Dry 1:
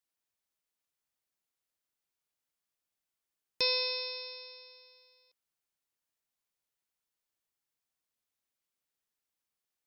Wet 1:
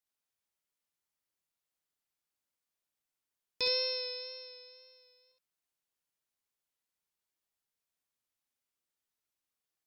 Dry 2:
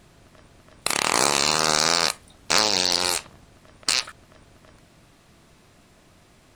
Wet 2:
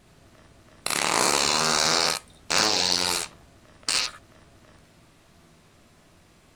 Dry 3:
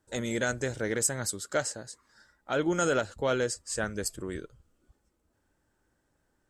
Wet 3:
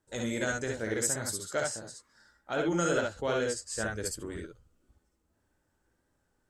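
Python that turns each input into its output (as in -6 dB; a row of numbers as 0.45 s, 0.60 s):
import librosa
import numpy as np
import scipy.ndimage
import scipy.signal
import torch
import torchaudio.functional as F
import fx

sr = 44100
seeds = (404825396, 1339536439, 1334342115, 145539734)

y = fx.room_early_taps(x, sr, ms=(18, 56, 68), db=(-11.0, -5.5, -3.5))
y = fx.wow_flutter(y, sr, seeds[0], rate_hz=2.1, depth_cents=23.0)
y = y * 10.0 ** (-4.0 / 20.0)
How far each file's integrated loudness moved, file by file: -1.0 LU, -1.5 LU, -1.5 LU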